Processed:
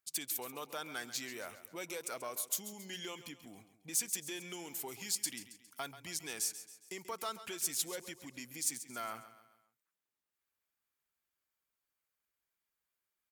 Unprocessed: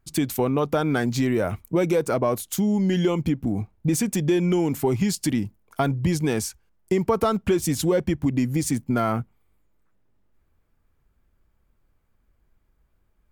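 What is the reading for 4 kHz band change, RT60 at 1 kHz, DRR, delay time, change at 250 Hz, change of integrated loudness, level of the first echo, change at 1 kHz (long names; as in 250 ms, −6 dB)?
−6.5 dB, no reverb audible, no reverb audible, 136 ms, −28.0 dB, −15.5 dB, −13.5 dB, −16.5 dB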